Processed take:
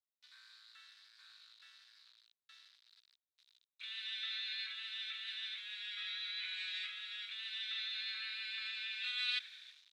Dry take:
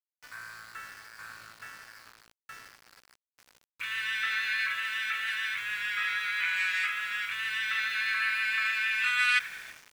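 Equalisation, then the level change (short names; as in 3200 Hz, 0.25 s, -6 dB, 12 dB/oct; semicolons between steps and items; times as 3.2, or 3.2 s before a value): band-pass 3800 Hz, Q 8.9; +4.0 dB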